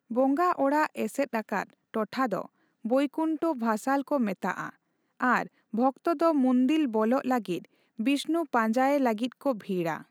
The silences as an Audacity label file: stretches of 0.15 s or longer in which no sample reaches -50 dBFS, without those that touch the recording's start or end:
1.730000	1.940000	silence
2.460000	2.840000	silence
4.750000	5.200000	silence
5.470000	5.730000	silence
7.650000	7.990000	silence